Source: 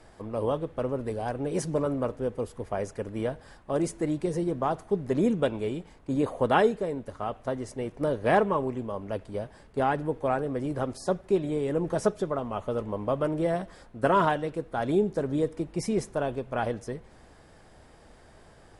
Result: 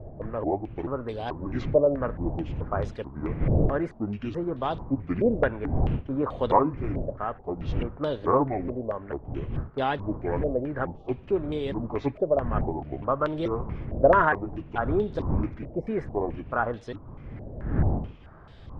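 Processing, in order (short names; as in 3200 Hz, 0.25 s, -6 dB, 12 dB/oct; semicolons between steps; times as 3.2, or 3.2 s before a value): trilling pitch shifter -7 st, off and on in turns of 0.434 s; wind noise 140 Hz -31 dBFS; bell 190 Hz -5.5 dB 0.22 oct; stepped low-pass 4.6 Hz 610–3600 Hz; gain -1.5 dB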